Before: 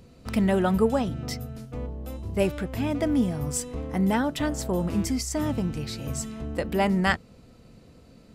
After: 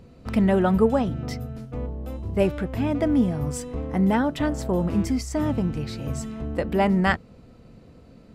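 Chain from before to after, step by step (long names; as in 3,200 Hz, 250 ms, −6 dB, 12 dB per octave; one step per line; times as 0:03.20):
high-shelf EQ 3,500 Hz −10.5 dB
level +3 dB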